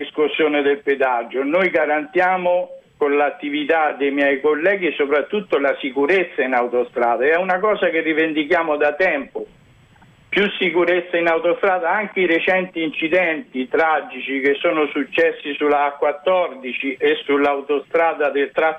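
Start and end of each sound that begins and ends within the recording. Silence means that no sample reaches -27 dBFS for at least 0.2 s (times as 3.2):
3.01–9.44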